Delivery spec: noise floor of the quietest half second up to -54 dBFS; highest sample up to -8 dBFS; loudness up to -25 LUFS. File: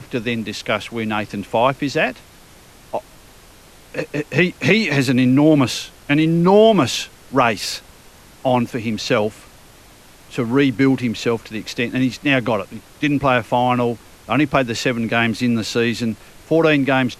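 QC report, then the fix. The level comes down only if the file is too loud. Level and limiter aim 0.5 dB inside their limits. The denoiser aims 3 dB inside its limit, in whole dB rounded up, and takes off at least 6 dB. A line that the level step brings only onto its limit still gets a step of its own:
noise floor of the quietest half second -45 dBFS: fail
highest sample -2.0 dBFS: fail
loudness -18.5 LUFS: fail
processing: noise reduction 6 dB, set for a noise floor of -45 dBFS; trim -7 dB

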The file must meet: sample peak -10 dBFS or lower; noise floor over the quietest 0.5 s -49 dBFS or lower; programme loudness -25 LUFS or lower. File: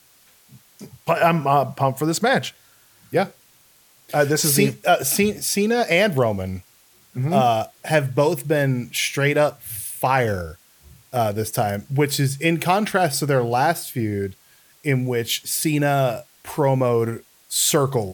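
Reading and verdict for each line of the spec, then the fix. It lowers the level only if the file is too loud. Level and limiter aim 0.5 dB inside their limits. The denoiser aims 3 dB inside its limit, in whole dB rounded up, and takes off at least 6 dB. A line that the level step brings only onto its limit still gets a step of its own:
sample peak -4.5 dBFS: fail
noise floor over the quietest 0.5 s -55 dBFS: pass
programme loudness -20.5 LUFS: fail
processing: trim -5 dB; peak limiter -10.5 dBFS

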